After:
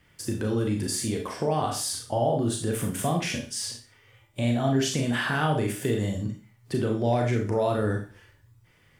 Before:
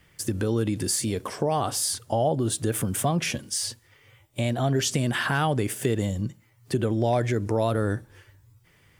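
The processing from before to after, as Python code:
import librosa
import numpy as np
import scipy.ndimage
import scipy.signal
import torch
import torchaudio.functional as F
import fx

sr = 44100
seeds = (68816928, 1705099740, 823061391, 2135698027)

y = fx.high_shelf(x, sr, hz=6800.0, db=-5.5)
y = fx.rev_schroeder(y, sr, rt60_s=0.37, comb_ms=26, drr_db=1.0)
y = y * 10.0 ** (-3.0 / 20.0)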